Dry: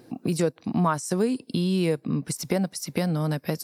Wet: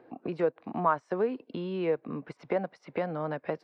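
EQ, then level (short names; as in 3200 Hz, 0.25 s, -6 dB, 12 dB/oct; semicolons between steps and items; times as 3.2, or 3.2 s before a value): three-band isolator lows -18 dB, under 400 Hz, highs -23 dB, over 3100 Hz; tape spacing loss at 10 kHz 30 dB; +3.0 dB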